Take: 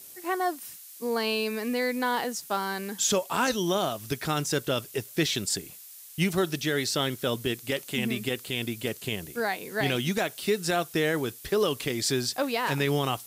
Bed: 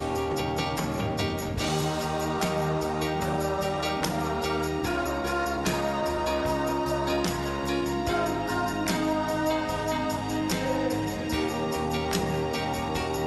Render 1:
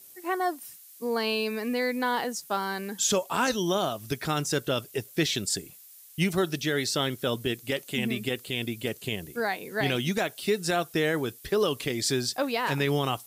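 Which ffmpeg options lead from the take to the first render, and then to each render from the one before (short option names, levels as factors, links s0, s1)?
-af "afftdn=nr=6:nf=-47"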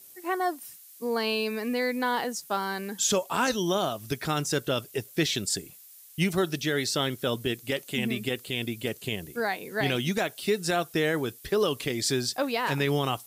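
-af anull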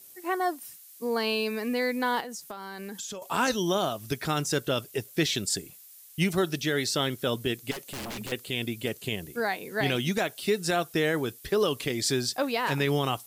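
-filter_complex "[0:a]asettb=1/sr,asplit=3[s0][s1][s2];[s0]atrim=end=2.204[s3];[s1]atrim=start=2.2:end=3.22,asetpts=PTS-STARTPTS,afade=t=in:d=0.004:c=qsin,afade=t=out:st=1.016:d=0.004:c=qsin,acompressor=threshold=0.02:ratio=16:attack=3.2:release=140:knee=1:detection=peak[s4];[s2]atrim=start=3.216[s5];[s3][s4]acrossfade=d=0.004:c1=hsin:c2=qsin[s6];[s6][s5]acrossfade=d=0.004:c1=qsin:c2=hsin,asettb=1/sr,asplit=3[s7][s8][s9];[s7]atrim=end=7.714[s10];[s8]atrim=start=7.71:end=8.32,asetpts=PTS-STARTPTS,afade=t=in:d=0.004:c=qsin,afade=t=out:st=0.606:d=0.004:c=qsin,aeval=exprs='0.0266*(abs(mod(val(0)/0.0266+3,4)-2)-1)':c=same[s11];[s9]atrim=start=8.316[s12];[s10][s11]acrossfade=d=0.004:c1=hsin:c2=qsin[s13];[s13][s12]acrossfade=d=0.004:c1=qsin:c2=hsin"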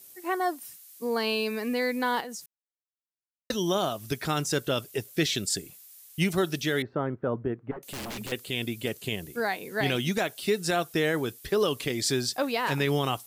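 -filter_complex "[0:a]asettb=1/sr,asplit=3[s0][s1][s2];[s0]atrim=end=5.144[s3];[s1]atrim=start=5.14:end=5.64,asetpts=PTS-STARTPTS,afade=t=in:d=0.004:c=qsin,afade=t=out:st=0.496:d=0.004:c=qsin,equalizer=f=920:t=o:w=0.22:g=-10[s4];[s2]atrim=start=5.636[s5];[s3][s4]acrossfade=d=0.004:c1=hsin:c2=qsin[s6];[s6][s5]acrossfade=d=0.004:c1=qsin:c2=hsin,asettb=1/sr,asplit=3[s7][s8][s9];[s7]atrim=end=6.824[s10];[s8]atrim=start=6.82:end=7.83,asetpts=PTS-STARTPTS,afade=t=in:d=0.004:c=qsin,afade=t=out:st=1.006:d=0.004:c=qsin,lowpass=f=1400:w=0.5412,lowpass=f=1400:w=1.3066[s11];[s9]atrim=start=7.826[s12];[s10][s11]acrossfade=d=0.004:c1=hsin:c2=qsin[s13];[s13][s12]acrossfade=d=0.004:c1=qsin:c2=hsin,asplit=3[s14][s15][s16];[s14]atrim=end=2.46,asetpts=PTS-STARTPTS,afade=t=out:st=2.456:d=0.004:c=hsin[s17];[s15]atrim=start=2.46:end=3.5,asetpts=PTS-STARTPTS,volume=0[s18];[s16]atrim=start=3.5,asetpts=PTS-STARTPTS,afade=t=in:d=0.004:c=hsin[s19];[s17][s18][s19]concat=n=3:v=0:a=1"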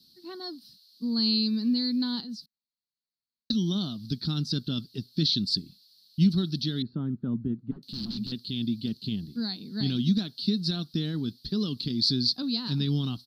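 -af "firequalizer=gain_entry='entry(100,0);entry(220,9);entry(370,-10);entry(530,-22);entry(1400,-15);entry(2100,-24);entry(4300,13);entry(6800,-24);entry(14000,-21)':delay=0.05:min_phase=1"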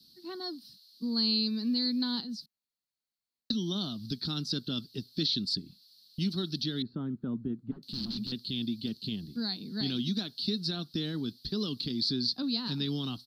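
-filter_complex "[0:a]acrossover=split=270|2900[s0][s1][s2];[s0]acompressor=threshold=0.0126:ratio=6[s3];[s2]alimiter=limit=0.075:level=0:latency=1:release=355[s4];[s3][s1][s4]amix=inputs=3:normalize=0"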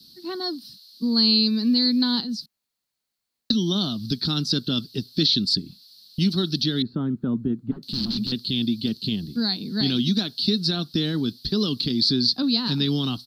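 -af "volume=2.99"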